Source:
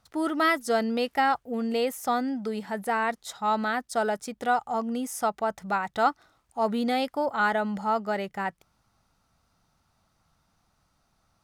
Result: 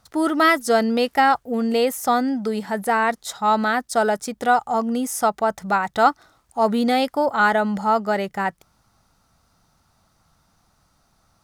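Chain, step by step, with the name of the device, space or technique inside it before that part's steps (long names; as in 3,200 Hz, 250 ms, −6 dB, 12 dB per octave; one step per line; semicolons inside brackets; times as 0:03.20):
exciter from parts (in parallel at −10 dB: high-pass filter 2,400 Hz 24 dB per octave + soft clipping −36.5 dBFS, distortion −9 dB)
on the sum: level +7 dB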